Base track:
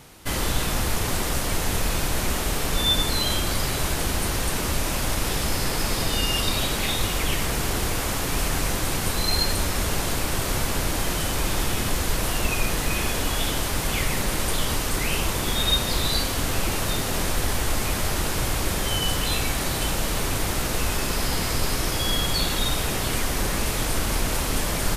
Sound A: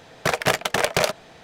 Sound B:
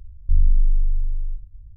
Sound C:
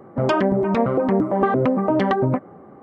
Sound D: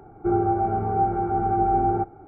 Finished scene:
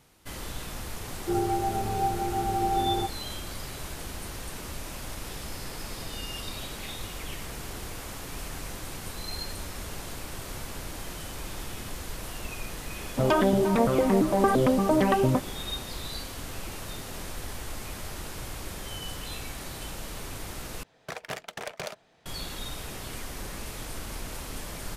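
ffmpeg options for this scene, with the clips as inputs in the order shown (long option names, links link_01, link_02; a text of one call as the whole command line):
ffmpeg -i bed.wav -i cue0.wav -i cue1.wav -i cue2.wav -i cue3.wav -filter_complex "[0:a]volume=-13dB,asplit=2[link_01][link_02];[link_01]atrim=end=20.834[link_03];[1:a]atrim=end=1.43,asetpts=PTS-STARTPTS,volume=-16dB[link_04];[link_02]atrim=start=22.256[link_05];[4:a]atrim=end=2.27,asetpts=PTS-STARTPTS,volume=-5.5dB,afade=type=in:duration=0.004:curve=hsin,afade=type=out:start_time=2.266:duration=0.004:curve=hsin,adelay=1030[link_06];[3:a]atrim=end=2.82,asetpts=PTS-STARTPTS,volume=-3.5dB,afade=type=in:duration=0.004:curve=hsin,afade=type=out:start_time=2.816:duration=0.004:curve=hsin,adelay=13010[link_07];[link_03][link_04]acrossfade=duration=0.004:curve1=hsin:curve2=hsin[link_08];[link_08][link_05]acrossfade=duration=0.004:curve1=hsin:curve2=hsin[link_09];[link_09][link_06][link_07]amix=inputs=3:normalize=0" out.wav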